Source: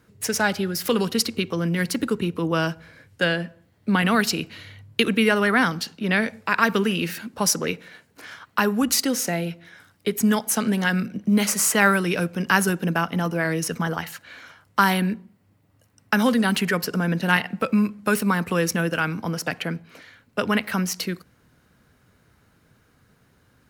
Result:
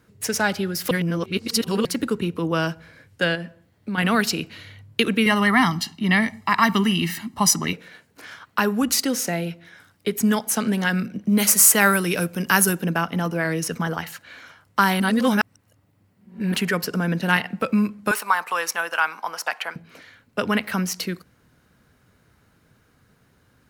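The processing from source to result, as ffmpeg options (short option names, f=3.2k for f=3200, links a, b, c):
-filter_complex "[0:a]asettb=1/sr,asplit=3[a][b][c];[a]atrim=end=3.354[d];[b]atrim=start=3.35:end=3.98,asetpts=PTS-STARTPTS,afade=t=in:d=0.004:c=qsin,afade=t=out:st=0.626:d=0.004:c=qsin,acompressor=threshold=-30dB:ratio=2:attack=3.2:release=140:knee=1:detection=peak[e];[c]atrim=start=3.976[f];[d][e]acrossfade=d=0.004:c1=hsin:c2=qsin[g];[g][f]acrossfade=d=0.004:c1=qsin:c2=hsin,asettb=1/sr,asplit=3[h][i][j];[h]atrim=end=5.264[k];[i]atrim=start=5.26:end=7.73,asetpts=PTS-STARTPTS,afade=t=in:d=0.004:c=qsin,afade=t=out:st=2.466:d=0.004:c=qsin,aecho=1:1:1:0.92,atrim=end_sample=108927[l];[j]atrim=start=7.726[m];[k][l]acrossfade=d=0.004:c1=hsin:c2=qsin[n];[n][m]acrossfade=d=0.004:c1=qsin:c2=hsin,asettb=1/sr,asplit=3[o][p][q];[o]atrim=end=11.384[r];[p]atrim=start=11.38:end=12.82,asetpts=PTS-STARTPTS,afade=t=in:d=0.004:c=qsin,afade=t=out:st=1.436:d=0.004:c=qsin,equalizer=f=14k:t=o:w=1.3:g=12[s];[q]atrim=start=12.816[t];[r][s]acrossfade=d=0.004:c1=hsin:c2=qsin[u];[u][t]acrossfade=d=0.004:c1=qsin:c2=hsin,asettb=1/sr,asplit=3[v][w][x];[v]atrim=end=18.114[y];[w]atrim=start=18.11:end=19.76,asetpts=PTS-STARTPTS,afade=t=in:d=0.004:c=qsin,afade=t=out:st=1.646:d=0.004:c=qsin,highpass=f=900:t=q:w=2.3[z];[x]atrim=start=19.756[aa];[y][z]acrossfade=d=0.004:c1=hsin:c2=qsin[ab];[ab][aa]acrossfade=d=0.004:c1=qsin:c2=hsin,asplit=5[ac][ad][ae][af][ag];[ac]atrim=end=0.912[ah];[ad]atrim=start=0.908:end=1.852,asetpts=PTS-STARTPTS,areverse[ai];[ae]atrim=start=1.848:end=15.002[aj];[af]atrim=start=14.998:end=16.542,asetpts=PTS-STARTPTS,areverse[ak];[ag]atrim=start=16.538[al];[ah][ai]acrossfade=d=0.004:c1=hsin:c2=hsin[am];[am][aj]acrossfade=d=0.004:c1=hsin:c2=hsin[an];[an][ak]acrossfade=d=0.004:c1=hsin:c2=hsin[ao];[ao][al]acrossfade=d=0.004:c1=hsin:c2=hsin"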